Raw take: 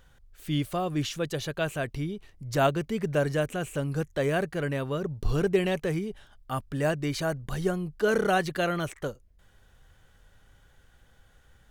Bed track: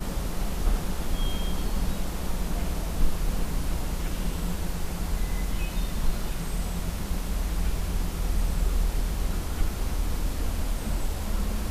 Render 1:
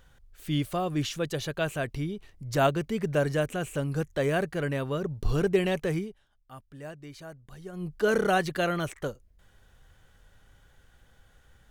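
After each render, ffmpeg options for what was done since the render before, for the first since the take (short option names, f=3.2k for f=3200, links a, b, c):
-filter_complex "[0:a]asplit=3[a][b][c];[a]atrim=end=6.14,asetpts=PTS-STARTPTS,afade=t=out:st=6:d=0.14:silence=0.177828[d];[b]atrim=start=6.14:end=7.72,asetpts=PTS-STARTPTS,volume=-15dB[e];[c]atrim=start=7.72,asetpts=PTS-STARTPTS,afade=t=in:d=0.14:silence=0.177828[f];[d][e][f]concat=n=3:v=0:a=1"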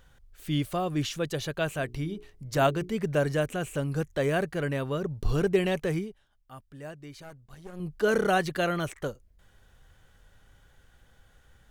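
-filter_complex "[0:a]asettb=1/sr,asplit=3[a][b][c];[a]atrim=end=1.694[d];[b]atrim=start=1.69:end=2.96,asetpts=PTS-STARTPTS,afade=t=in:d=0.004:c=qsin,afade=t=out:st=1.266:d=0.004:c=qsin,bandreject=f=60:t=h:w=6,bandreject=f=120:t=h:w=6,bandreject=f=180:t=h:w=6,bandreject=f=240:t=h:w=6,bandreject=f=300:t=h:w=6,bandreject=f=360:t=h:w=6,bandreject=f=420:t=h:w=6[e];[c]atrim=start=2.956[f];[d][e]acrossfade=d=0.004:c1=hsin:c2=qsin[g];[g][f]acrossfade=d=0.004:c1=qsin:c2=hsin,asettb=1/sr,asplit=3[h][i][j];[h]atrim=end=7.224[k];[i]atrim=start=7.22:end=7.8,asetpts=PTS-STARTPTS,afade=t=in:d=0.004:c=qsin,afade=t=out:st=0.576:d=0.004:c=qsin,aeval=exprs='clip(val(0),-1,0.00316)':c=same[l];[j]atrim=start=7.796[m];[k][l]acrossfade=d=0.004:c1=hsin:c2=qsin[n];[n][m]acrossfade=d=0.004:c1=qsin:c2=hsin"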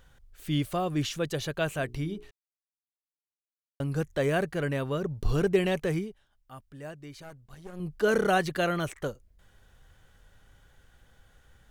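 -filter_complex "[0:a]asplit=3[a][b][c];[a]atrim=end=2.31,asetpts=PTS-STARTPTS,afade=t=out:st=2.306:d=0.004:c=hsin[d];[b]atrim=start=2.31:end=3.8,asetpts=PTS-STARTPTS,volume=0[e];[c]atrim=start=3.8,asetpts=PTS-STARTPTS,afade=t=in:d=0.004:c=hsin[f];[d][e][f]concat=n=3:v=0:a=1"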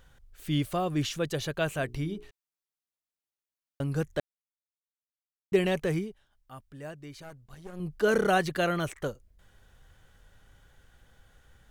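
-filter_complex "[0:a]asplit=3[a][b][c];[a]atrim=end=4.2,asetpts=PTS-STARTPTS,afade=t=out:st=4.196:d=0.004:c=hsin[d];[b]atrim=start=4.2:end=5.52,asetpts=PTS-STARTPTS,volume=0[e];[c]atrim=start=5.52,asetpts=PTS-STARTPTS,afade=t=in:d=0.004:c=hsin[f];[d][e][f]concat=n=3:v=0:a=1"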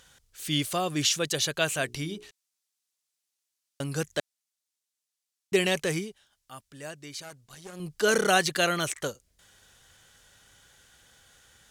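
-af "highpass=f=150:p=1,equalizer=f=6.9k:w=0.37:g=14"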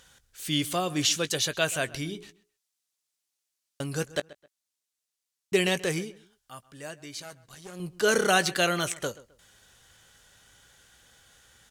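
-filter_complex "[0:a]asplit=2[a][b];[b]adelay=17,volume=-14dB[c];[a][c]amix=inputs=2:normalize=0,asplit=2[d][e];[e]adelay=131,lowpass=f=3.3k:p=1,volume=-19dB,asplit=2[f][g];[g]adelay=131,lowpass=f=3.3k:p=1,volume=0.28[h];[d][f][h]amix=inputs=3:normalize=0"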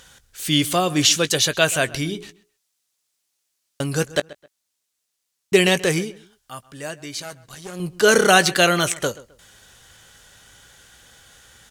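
-af "volume=8.5dB"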